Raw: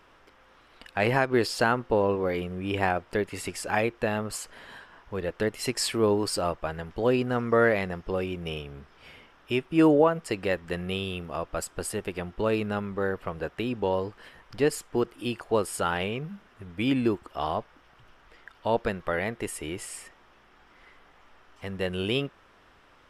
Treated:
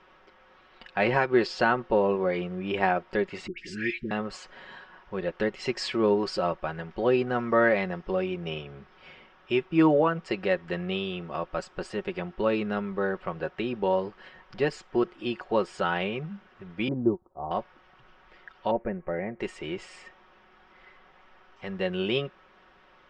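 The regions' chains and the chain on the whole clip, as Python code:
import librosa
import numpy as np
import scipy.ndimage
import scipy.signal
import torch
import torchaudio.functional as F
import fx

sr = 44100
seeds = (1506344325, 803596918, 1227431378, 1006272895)

y = fx.chain(x, sr, fx.ellip_bandstop(low_hz=360.0, high_hz=1800.0, order=3, stop_db=50),
    fx.dispersion(late='highs', ms=113.0, hz=1200.0), at=(3.47, 4.11))
y = fx.chain(y, sr, fx.cheby2_lowpass(hz=3100.0, order=4, stop_db=60),
    fx.peak_eq(hz=93.0, db=10.5, octaves=0.8),
    fx.upward_expand(threshold_db=-44.0, expansion=1.5), at=(16.88, 17.51))
y = fx.chain(y, sr, fx.steep_lowpass(hz=2200.0, slope=48),
    fx.peak_eq(hz=1400.0, db=-12.5, octaves=1.3),
    fx.notch(hz=1000.0, q=14.0), at=(18.71, 19.4))
y = scipy.signal.sosfilt(scipy.signal.bessel(8, 3900.0, 'lowpass', norm='mag', fs=sr, output='sos'), y)
y = fx.low_shelf(y, sr, hz=140.0, db=-6.0)
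y = y + 0.58 * np.pad(y, (int(5.4 * sr / 1000.0), 0))[:len(y)]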